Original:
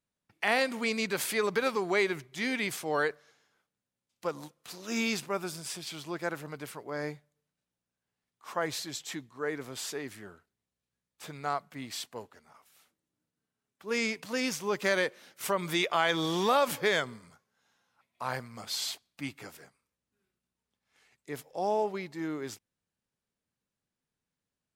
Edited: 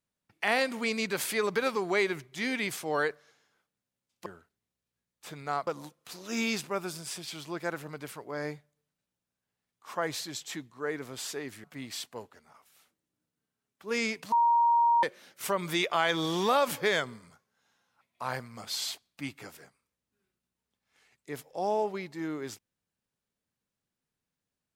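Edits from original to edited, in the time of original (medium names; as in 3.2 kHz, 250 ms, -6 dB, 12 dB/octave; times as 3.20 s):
10.23–11.64 s: move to 4.26 s
14.32–15.03 s: bleep 939 Hz -20 dBFS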